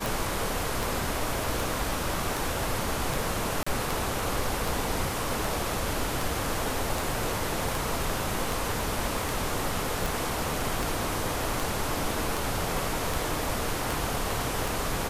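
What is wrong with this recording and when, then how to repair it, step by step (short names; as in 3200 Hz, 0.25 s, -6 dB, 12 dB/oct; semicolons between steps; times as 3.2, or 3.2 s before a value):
tick 78 rpm
3.63–3.67 gap 35 ms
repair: de-click; interpolate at 3.63, 35 ms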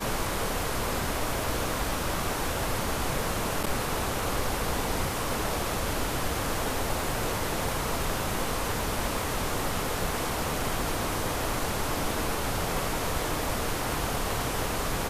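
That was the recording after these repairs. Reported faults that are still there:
none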